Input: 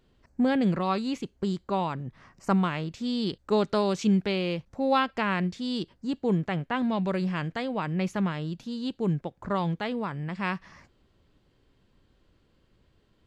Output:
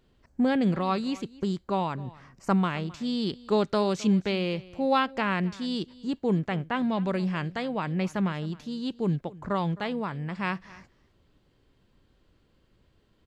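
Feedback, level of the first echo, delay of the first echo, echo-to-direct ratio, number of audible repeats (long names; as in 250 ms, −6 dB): repeats not evenly spaced, −20.5 dB, 263 ms, −20.5 dB, 1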